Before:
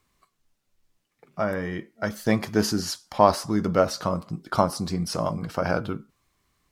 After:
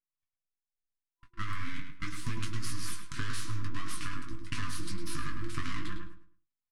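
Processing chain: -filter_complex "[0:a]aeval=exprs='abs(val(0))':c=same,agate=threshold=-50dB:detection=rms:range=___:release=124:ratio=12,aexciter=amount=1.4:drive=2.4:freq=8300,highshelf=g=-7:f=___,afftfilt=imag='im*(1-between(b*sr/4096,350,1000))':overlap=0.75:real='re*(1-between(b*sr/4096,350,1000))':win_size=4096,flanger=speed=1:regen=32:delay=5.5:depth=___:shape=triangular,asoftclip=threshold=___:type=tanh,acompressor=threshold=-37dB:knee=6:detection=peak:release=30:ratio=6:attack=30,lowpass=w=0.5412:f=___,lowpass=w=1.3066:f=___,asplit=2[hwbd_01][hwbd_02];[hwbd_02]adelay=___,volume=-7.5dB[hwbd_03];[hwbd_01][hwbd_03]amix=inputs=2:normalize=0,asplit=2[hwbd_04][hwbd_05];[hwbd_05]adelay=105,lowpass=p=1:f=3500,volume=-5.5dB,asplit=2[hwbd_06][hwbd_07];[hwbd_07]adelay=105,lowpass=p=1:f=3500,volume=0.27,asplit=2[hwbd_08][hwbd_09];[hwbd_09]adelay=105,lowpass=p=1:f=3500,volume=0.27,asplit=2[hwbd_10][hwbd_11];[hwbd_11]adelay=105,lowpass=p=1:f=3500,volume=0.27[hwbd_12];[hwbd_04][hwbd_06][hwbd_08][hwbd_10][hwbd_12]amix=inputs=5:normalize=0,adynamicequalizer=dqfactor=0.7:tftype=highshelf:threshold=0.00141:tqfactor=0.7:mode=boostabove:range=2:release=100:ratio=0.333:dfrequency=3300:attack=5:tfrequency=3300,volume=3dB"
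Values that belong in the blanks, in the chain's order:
-31dB, 6600, 3.8, -15.5dB, 12000, 12000, 20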